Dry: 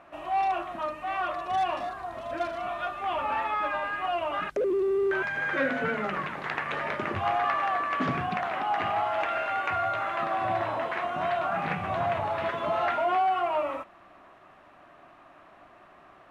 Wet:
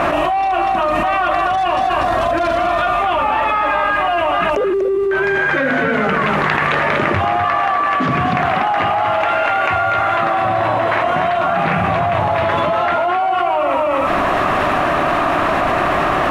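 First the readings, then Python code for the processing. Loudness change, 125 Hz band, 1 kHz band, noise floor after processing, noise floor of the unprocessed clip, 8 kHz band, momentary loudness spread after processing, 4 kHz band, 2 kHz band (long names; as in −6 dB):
+13.0 dB, +16.0 dB, +13.0 dB, −17 dBFS, −54 dBFS, can't be measured, 1 LU, +14.0 dB, +13.5 dB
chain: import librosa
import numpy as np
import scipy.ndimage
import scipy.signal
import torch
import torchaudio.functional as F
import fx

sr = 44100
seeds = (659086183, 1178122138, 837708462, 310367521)

y = fx.low_shelf(x, sr, hz=180.0, db=3.5)
y = y + 10.0 ** (-6.0 / 20.0) * np.pad(y, (int(242 * sr / 1000.0), 0))[:len(y)]
y = fx.env_flatten(y, sr, amount_pct=100)
y = y * 10.0 ** (4.5 / 20.0)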